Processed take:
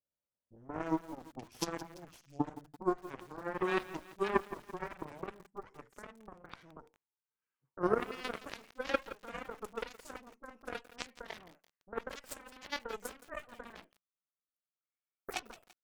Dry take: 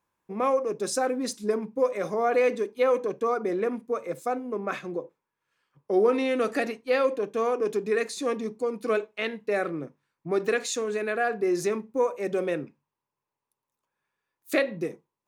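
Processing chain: gliding tape speed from 56% -> 137%; peaking EQ 3.9 kHz -14 dB 0.32 oct; in parallel at -2 dB: compression 8:1, threshold -31 dBFS, peak gain reduction 14 dB; on the sum: bands offset in time lows, highs 50 ms, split 710 Hz; Chebyshev shaper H 3 -9 dB, 6 -34 dB, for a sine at -10.5 dBFS; bit-crushed delay 169 ms, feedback 55%, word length 7-bit, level -15 dB; trim -1.5 dB

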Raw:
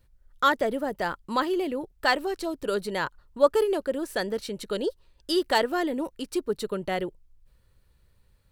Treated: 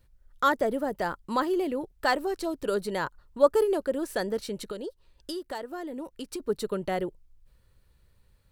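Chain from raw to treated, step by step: dynamic bell 2.9 kHz, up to -7 dB, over -42 dBFS, Q 0.88; 4.64–6.40 s: compression 5:1, threshold -34 dBFS, peak gain reduction 13.5 dB

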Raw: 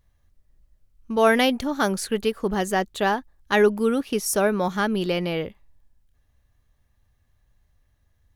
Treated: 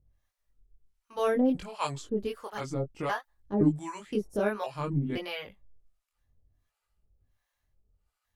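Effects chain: pitch shift switched off and on -5.5 st, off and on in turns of 515 ms; chorus voices 2, 0.57 Hz, delay 22 ms, depth 2.2 ms; harmonic tremolo 1.4 Hz, depth 100%, crossover 630 Hz

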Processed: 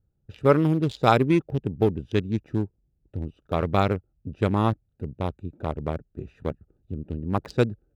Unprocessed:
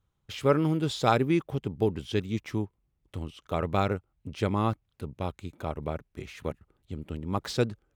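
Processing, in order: local Wiener filter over 41 samples; trim +5 dB

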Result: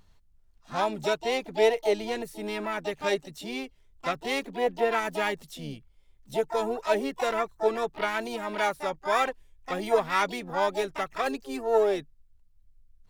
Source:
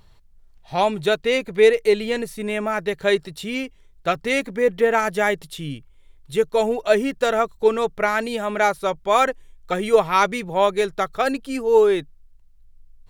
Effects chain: harmony voices +7 st -6 dB, +12 st -14 dB; trim -9 dB

